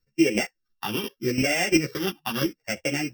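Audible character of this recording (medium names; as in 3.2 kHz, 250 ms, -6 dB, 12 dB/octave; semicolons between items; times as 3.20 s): a buzz of ramps at a fixed pitch in blocks of 16 samples; phasing stages 6, 0.79 Hz, lowest notch 550–1100 Hz; chopped level 2.9 Hz, depth 60%, duty 10%; a shimmering, thickened sound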